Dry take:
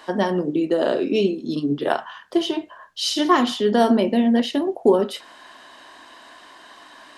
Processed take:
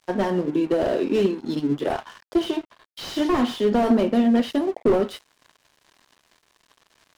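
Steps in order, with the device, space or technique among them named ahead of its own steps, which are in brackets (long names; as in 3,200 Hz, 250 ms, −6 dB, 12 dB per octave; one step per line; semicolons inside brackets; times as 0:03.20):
early transistor amplifier (dead-zone distortion −40.5 dBFS; slew-rate limiting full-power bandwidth 78 Hz)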